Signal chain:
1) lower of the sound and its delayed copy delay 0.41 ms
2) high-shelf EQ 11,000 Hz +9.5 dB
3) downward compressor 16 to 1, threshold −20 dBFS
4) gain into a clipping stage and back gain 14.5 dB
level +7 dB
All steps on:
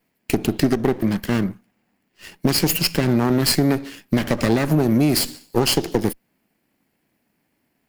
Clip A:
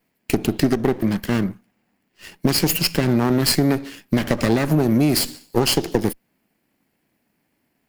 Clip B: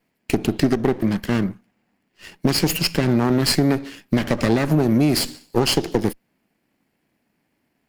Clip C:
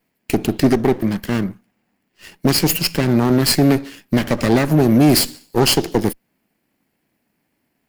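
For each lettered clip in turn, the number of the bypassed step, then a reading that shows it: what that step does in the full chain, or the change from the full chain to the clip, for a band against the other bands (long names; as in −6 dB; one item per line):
4, distortion level −28 dB
2, 8 kHz band −2.5 dB
3, average gain reduction 2.5 dB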